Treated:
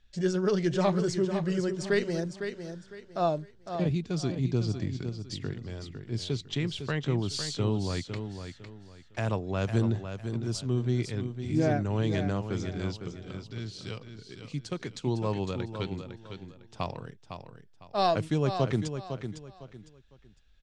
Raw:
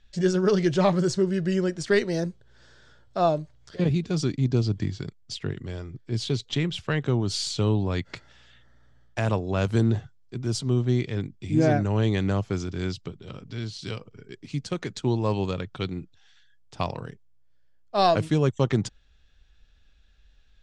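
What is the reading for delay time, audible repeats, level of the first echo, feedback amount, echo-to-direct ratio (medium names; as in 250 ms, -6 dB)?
505 ms, 3, -8.5 dB, 28%, -8.0 dB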